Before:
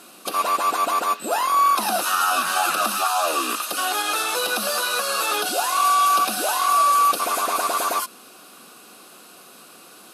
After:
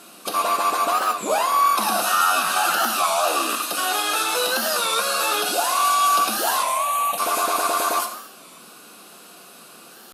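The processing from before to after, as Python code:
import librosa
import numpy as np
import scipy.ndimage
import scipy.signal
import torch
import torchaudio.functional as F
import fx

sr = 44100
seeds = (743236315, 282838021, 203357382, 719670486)

y = fx.fixed_phaser(x, sr, hz=1400.0, stages=6, at=(6.64, 7.18))
y = fx.rev_gated(y, sr, seeds[0], gate_ms=300, shape='falling', drr_db=4.5)
y = fx.record_warp(y, sr, rpm=33.33, depth_cents=160.0)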